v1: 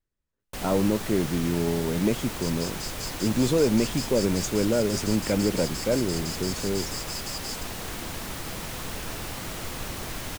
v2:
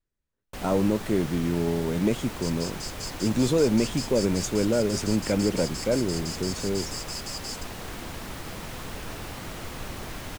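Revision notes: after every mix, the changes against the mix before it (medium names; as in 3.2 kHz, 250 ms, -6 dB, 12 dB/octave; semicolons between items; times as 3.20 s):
first sound: add treble shelf 4 kHz -6 dB; reverb: off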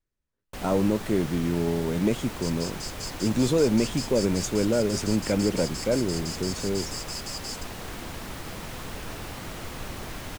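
no change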